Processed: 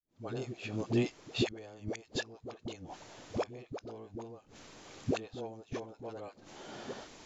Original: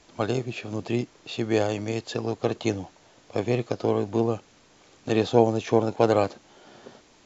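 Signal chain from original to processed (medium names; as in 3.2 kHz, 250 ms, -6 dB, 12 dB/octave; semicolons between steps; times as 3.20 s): fade-in on the opening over 2.05 s; inverted gate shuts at -19 dBFS, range -27 dB; phase dispersion highs, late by 74 ms, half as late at 460 Hz; trim +3.5 dB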